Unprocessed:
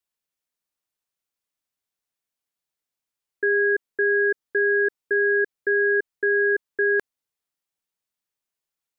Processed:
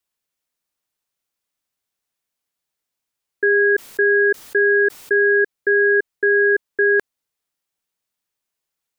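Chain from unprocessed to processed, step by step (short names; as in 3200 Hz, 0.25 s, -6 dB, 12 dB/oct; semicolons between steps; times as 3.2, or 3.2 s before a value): 3.6–5.43 sustainer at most 120 dB/s; gain +5 dB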